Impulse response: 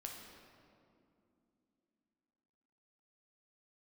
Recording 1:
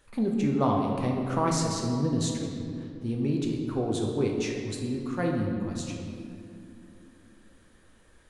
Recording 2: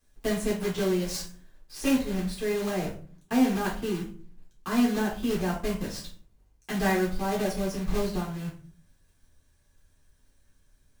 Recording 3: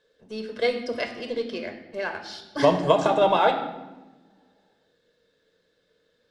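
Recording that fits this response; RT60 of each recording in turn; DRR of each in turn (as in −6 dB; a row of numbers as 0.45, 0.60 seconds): 1; 2.7, 0.45, 1.1 seconds; 0.0, −5.0, 5.0 decibels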